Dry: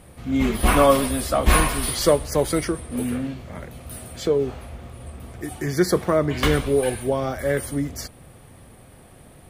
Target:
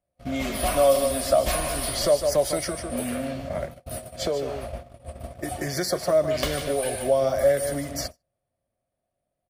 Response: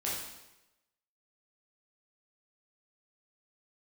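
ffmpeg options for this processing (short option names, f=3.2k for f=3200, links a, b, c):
-filter_complex "[0:a]asplit=2[a][b];[b]aecho=0:1:149:0.299[c];[a][c]amix=inputs=2:normalize=0,agate=range=-40dB:threshold=-35dB:ratio=16:detection=peak,acrossover=split=760|3400[d][e][f];[d]acompressor=threshold=-32dB:ratio=4[g];[e]acompressor=threshold=-38dB:ratio=4[h];[f]acompressor=threshold=-32dB:ratio=4[i];[g][h][i]amix=inputs=3:normalize=0,superequalizer=8b=3.98:14b=1.41,volume=2dB"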